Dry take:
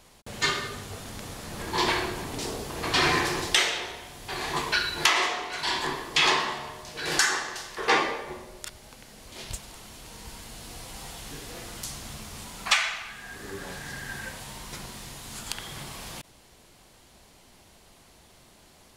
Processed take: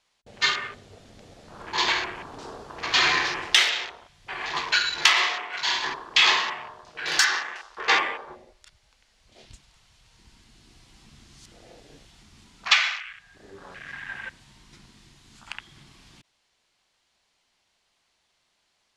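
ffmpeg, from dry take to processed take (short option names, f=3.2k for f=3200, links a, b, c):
-filter_complex "[0:a]asplit=3[a][b][c];[a]atrim=end=11.062[d];[b]atrim=start=11.058:end=12.232,asetpts=PTS-STARTPTS,areverse[e];[c]atrim=start=12.228[f];[d][e]acrossfade=d=0.004:c1=hsin:c2=hsin[g];[g][f]acrossfade=d=0.004:c1=hsin:c2=hsin,lowpass=5.9k,afwtdn=0.0141,tiltshelf=f=710:g=-8.5,volume=-2.5dB"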